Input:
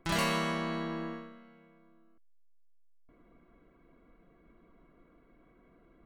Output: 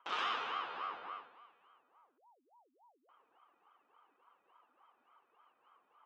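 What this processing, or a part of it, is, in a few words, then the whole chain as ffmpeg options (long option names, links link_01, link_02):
voice changer toy: -af "aeval=exprs='val(0)*sin(2*PI*610*n/s+610*0.6/3.5*sin(2*PI*3.5*n/s))':channel_layout=same,highpass=590,equalizer=frequency=610:width_type=q:width=4:gain=-9,equalizer=frequency=1200:width_type=q:width=4:gain=10,equalizer=frequency=1900:width_type=q:width=4:gain=-5,equalizer=frequency=3000:width_type=q:width=4:gain=6,equalizer=frequency=4500:width_type=q:width=4:gain=-7,lowpass=frequency=4900:width=0.5412,lowpass=frequency=4900:width=1.3066,volume=-4.5dB"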